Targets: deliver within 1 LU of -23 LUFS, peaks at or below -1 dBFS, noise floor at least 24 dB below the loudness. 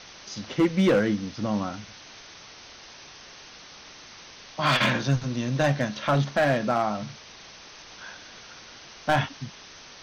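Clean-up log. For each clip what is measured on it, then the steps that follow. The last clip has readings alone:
clipped 0.8%; flat tops at -15.5 dBFS; noise floor -47 dBFS; noise floor target -49 dBFS; loudness -25.0 LUFS; peak -15.5 dBFS; loudness target -23.0 LUFS
-> clip repair -15.5 dBFS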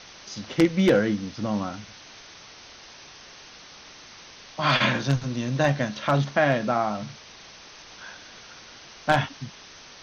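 clipped 0.0%; noise floor -47 dBFS; noise floor target -49 dBFS
-> denoiser 6 dB, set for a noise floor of -47 dBFS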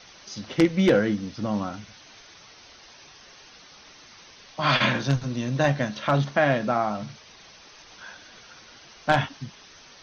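noise floor -50 dBFS; loudness -24.5 LUFS; peak -6.5 dBFS; loudness target -23.0 LUFS
-> gain +1.5 dB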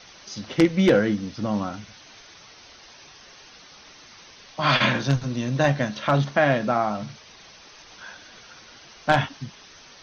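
loudness -23.0 LUFS; peak -5.0 dBFS; noise floor -49 dBFS

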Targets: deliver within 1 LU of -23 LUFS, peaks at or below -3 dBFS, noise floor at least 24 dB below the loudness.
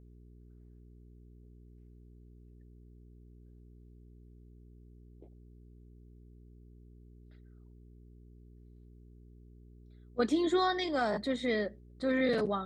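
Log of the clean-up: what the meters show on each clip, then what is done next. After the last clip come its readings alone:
hum 60 Hz; harmonics up to 420 Hz; hum level -53 dBFS; loudness -31.5 LUFS; peak -17.5 dBFS; loudness target -23.0 LUFS
-> de-hum 60 Hz, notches 7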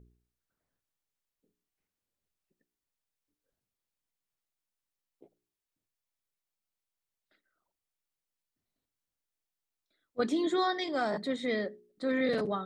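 hum none; loudness -31.5 LUFS; peak -18.0 dBFS; loudness target -23.0 LUFS
-> gain +8.5 dB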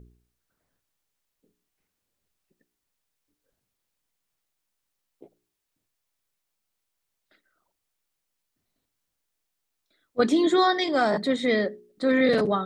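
loudness -23.0 LUFS; peak -9.5 dBFS; noise floor -82 dBFS

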